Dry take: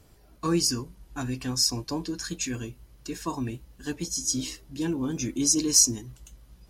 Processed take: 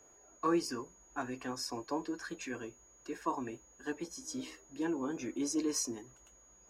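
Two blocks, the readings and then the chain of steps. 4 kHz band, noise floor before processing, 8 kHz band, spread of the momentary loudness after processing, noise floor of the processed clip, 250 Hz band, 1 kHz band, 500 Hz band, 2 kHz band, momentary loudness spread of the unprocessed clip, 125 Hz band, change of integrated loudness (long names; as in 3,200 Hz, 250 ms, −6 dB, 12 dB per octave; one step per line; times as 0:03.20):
−16.5 dB, −57 dBFS, −17.0 dB, 12 LU, −63 dBFS, −7.0 dB, −0.5 dB, −3.5 dB, −3.5 dB, 19 LU, −18.0 dB, −11.5 dB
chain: steady tone 6,700 Hz −43 dBFS
three-way crossover with the lows and the highs turned down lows −21 dB, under 330 Hz, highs −18 dB, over 2,100 Hz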